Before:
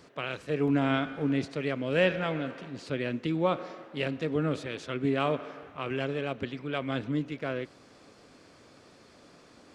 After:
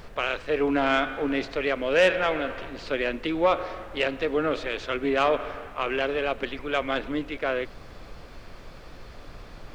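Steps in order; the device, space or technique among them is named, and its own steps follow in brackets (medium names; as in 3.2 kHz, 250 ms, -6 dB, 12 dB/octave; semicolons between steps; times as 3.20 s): aircraft cabin announcement (band-pass 440–4100 Hz; saturation -20.5 dBFS, distortion -18 dB; brown noise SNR 15 dB); trim +9 dB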